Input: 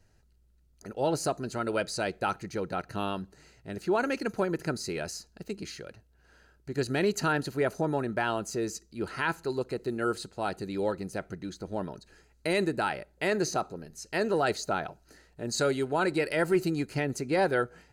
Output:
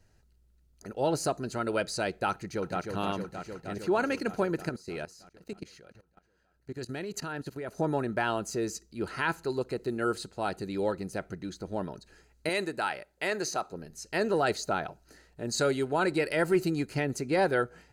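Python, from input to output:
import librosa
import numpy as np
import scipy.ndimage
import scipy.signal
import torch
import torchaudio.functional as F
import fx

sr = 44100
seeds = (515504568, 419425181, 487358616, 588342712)

y = fx.echo_throw(x, sr, start_s=2.31, length_s=0.62, ms=310, feedback_pct=80, wet_db=-5.5)
y = fx.level_steps(y, sr, step_db=18, at=(4.69, 7.78))
y = fx.low_shelf(y, sr, hz=360.0, db=-11.0, at=(12.49, 13.73))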